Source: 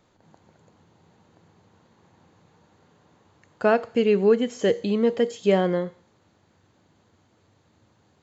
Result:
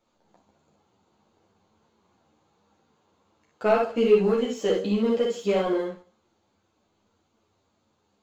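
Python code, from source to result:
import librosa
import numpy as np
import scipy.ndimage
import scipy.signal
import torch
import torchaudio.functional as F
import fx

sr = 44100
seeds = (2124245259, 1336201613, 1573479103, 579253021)

y = fx.peak_eq(x, sr, hz=1800.0, db=-8.5, octaves=0.29)
y = fx.room_early_taps(y, sr, ms=(33, 59), db=(-7.0, -3.0))
y = fx.rev_schroeder(y, sr, rt60_s=0.63, comb_ms=28, drr_db=11.5)
y = fx.leveller(y, sr, passes=1)
y = fx.peak_eq(y, sr, hz=120.0, db=-7.5, octaves=1.5)
y = fx.ensemble(y, sr)
y = y * librosa.db_to_amplitude(-3.0)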